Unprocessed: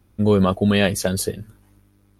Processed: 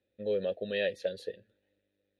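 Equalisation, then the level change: vowel filter e; bass shelf 220 Hz +5.5 dB; peaking EQ 3.8 kHz +15 dB 0.36 oct; -4.5 dB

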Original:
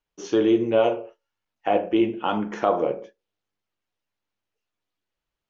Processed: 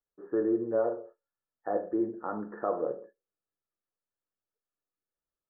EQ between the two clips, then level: rippled Chebyshev low-pass 1.8 kHz, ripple 6 dB; -7.0 dB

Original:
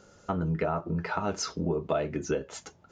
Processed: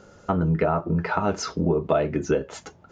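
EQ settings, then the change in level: treble shelf 3.7 kHz -8.5 dB; +7.0 dB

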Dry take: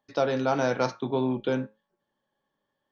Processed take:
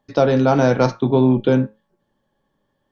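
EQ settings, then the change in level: tilt EQ -3 dB/octave; treble shelf 3.2 kHz +8.5 dB; +6.5 dB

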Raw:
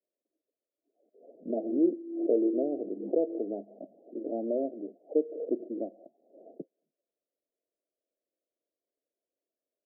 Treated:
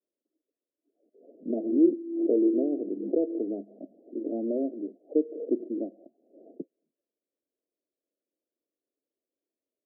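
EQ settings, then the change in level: band-pass filter 280 Hz, Q 1.5; +5.5 dB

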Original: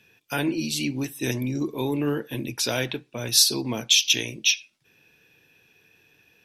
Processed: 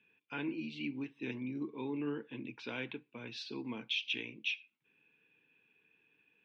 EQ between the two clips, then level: cabinet simulation 270–2500 Hz, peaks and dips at 360 Hz -6 dB, 580 Hz -5 dB, 1.3 kHz -6 dB, 1.8 kHz -9 dB; peaking EQ 670 Hz -13 dB 0.78 oct; -5.5 dB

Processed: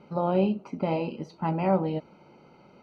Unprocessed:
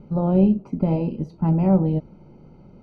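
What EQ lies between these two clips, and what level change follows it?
band-pass filter 2.7 kHz, Q 0.54; +8.0 dB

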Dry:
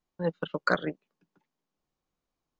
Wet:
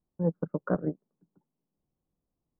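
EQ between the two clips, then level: Gaussian low-pass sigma 8 samples; distance through air 410 m; peaking EQ 120 Hz +6.5 dB 2.9 oct; 0.0 dB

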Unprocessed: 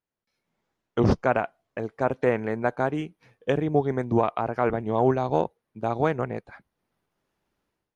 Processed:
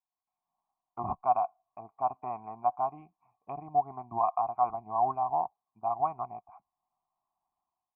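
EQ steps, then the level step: cascade formant filter a; static phaser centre 2.5 kHz, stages 8; +8.5 dB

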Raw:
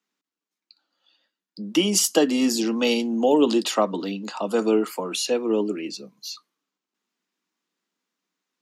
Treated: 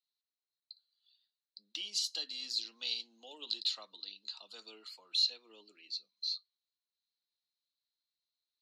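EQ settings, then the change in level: band-pass filter 4.1 kHz, Q 15; +5.5 dB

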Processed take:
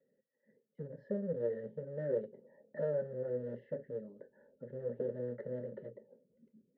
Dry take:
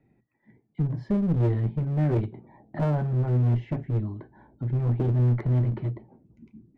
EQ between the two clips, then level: vowel filter e; treble shelf 2.2 kHz -10.5 dB; static phaser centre 490 Hz, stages 8; +8.5 dB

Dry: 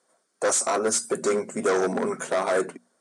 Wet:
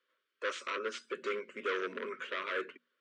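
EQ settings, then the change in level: high-pass 480 Hz 12 dB/octave; Butterworth band-stop 760 Hz, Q 1.2; four-pole ladder low-pass 3.3 kHz, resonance 60%; +2.5 dB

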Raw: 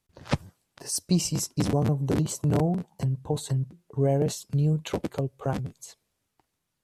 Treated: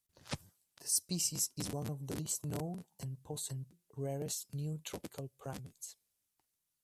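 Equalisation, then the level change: pre-emphasis filter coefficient 0.8; -2.0 dB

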